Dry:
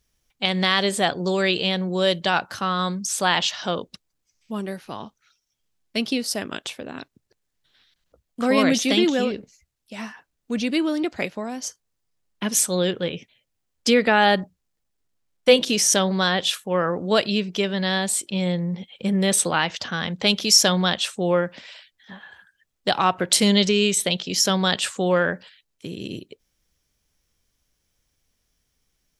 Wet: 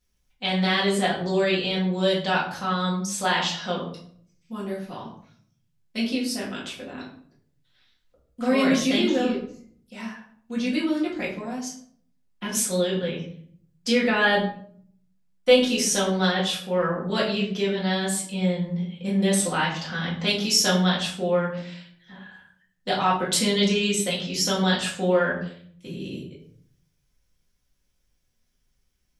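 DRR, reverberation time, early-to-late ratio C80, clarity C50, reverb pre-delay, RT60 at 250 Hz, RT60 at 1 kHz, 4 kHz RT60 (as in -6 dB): -6.5 dB, 0.60 s, 10.0 dB, 6.0 dB, 4 ms, 0.85 s, 0.55 s, 0.40 s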